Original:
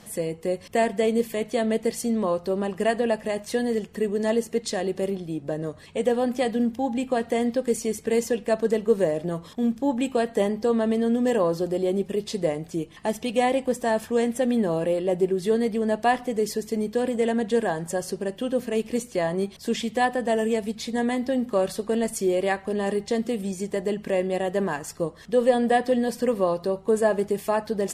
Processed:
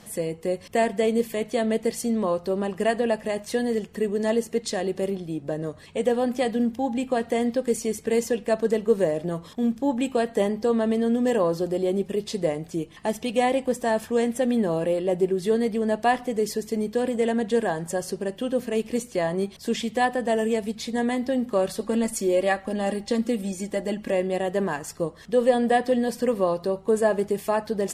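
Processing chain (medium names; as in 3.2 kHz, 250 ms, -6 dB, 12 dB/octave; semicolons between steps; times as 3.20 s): 21.80–24.12 s: comb 3.6 ms, depth 58%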